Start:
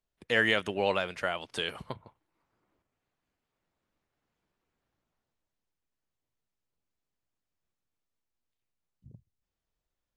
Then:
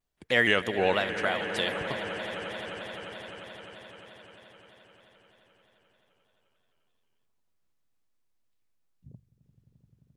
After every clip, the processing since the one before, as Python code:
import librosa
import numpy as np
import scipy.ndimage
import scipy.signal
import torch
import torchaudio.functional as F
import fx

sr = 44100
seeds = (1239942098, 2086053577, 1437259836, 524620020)

y = fx.echo_swell(x, sr, ms=87, loudest=8, wet_db=-17)
y = fx.vibrato_shape(y, sr, shape='square', rate_hz=3.2, depth_cents=100.0)
y = y * librosa.db_to_amplitude(2.5)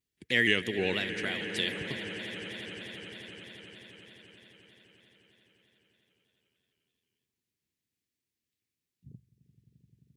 y = scipy.signal.sosfilt(scipy.signal.butter(2, 78.0, 'highpass', fs=sr, output='sos'), x)
y = fx.band_shelf(y, sr, hz=870.0, db=-14.0, octaves=1.7)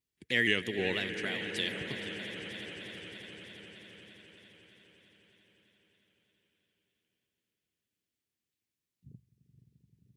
y = fx.echo_feedback(x, sr, ms=473, feedback_pct=59, wet_db=-13.5)
y = y * librosa.db_to_amplitude(-2.5)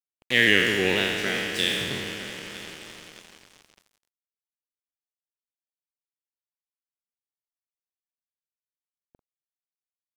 y = fx.spec_trails(x, sr, decay_s=1.88)
y = np.sign(y) * np.maximum(np.abs(y) - 10.0 ** (-40.5 / 20.0), 0.0)
y = y * librosa.db_to_amplitude(7.0)